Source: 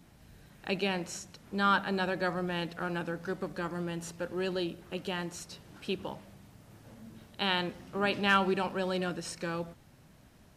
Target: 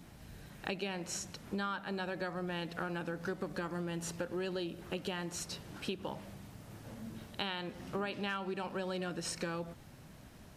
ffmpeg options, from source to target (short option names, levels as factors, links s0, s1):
-af "acompressor=threshold=0.0126:ratio=16,volume=1.58"